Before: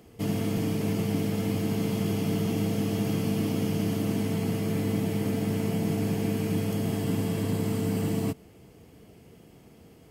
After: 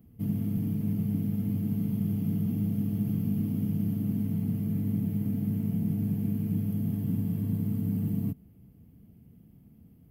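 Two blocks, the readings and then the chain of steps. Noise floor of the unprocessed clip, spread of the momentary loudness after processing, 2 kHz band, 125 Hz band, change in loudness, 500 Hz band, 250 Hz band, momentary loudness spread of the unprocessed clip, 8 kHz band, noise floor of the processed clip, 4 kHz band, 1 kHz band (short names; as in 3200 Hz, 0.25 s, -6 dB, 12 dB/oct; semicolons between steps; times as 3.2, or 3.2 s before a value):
-53 dBFS, 1 LU, under -15 dB, 0.0 dB, -1.5 dB, -16.5 dB, -1.0 dB, 1 LU, under -15 dB, -56 dBFS, under -20 dB, under -15 dB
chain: EQ curve 230 Hz 0 dB, 400 Hz -17 dB, 2800 Hz -20 dB, 7500 Hz -26 dB, 13000 Hz -3 dB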